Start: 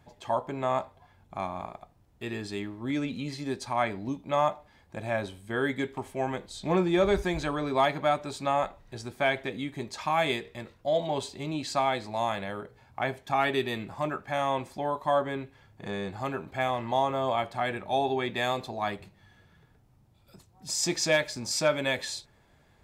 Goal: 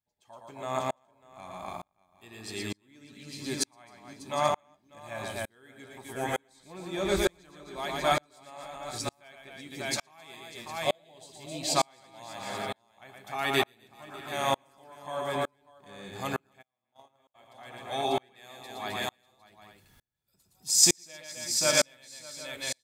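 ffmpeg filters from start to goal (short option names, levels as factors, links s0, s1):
-filter_complex "[0:a]aecho=1:1:116|263|594|757|833:0.531|0.422|0.376|0.251|0.158,crystalizer=i=4:c=0,asplit=3[s0][s1][s2];[s0]afade=t=out:st=16.61:d=0.02[s3];[s1]agate=range=0.00891:threshold=0.126:ratio=16:detection=peak,afade=t=in:st=16.61:d=0.02,afade=t=out:st=17.34:d=0.02[s4];[s2]afade=t=in:st=17.34:d=0.02[s5];[s3][s4][s5]amix=inputs=3:normalize=0,aeval=exprs='val(0)*pow(10,-39*if(lt(mod(-1.1*n/s,1),2*abs(-1.1)/1000),1-mod(-1.1*n/s,1)/(2*abs(-1.1)/1000),(mod(-1.1*n/s,1)-2*abs(-1.1)/1000)/(1-2*abs(-1.1)/1000))/20)':c=same,volume=1.12"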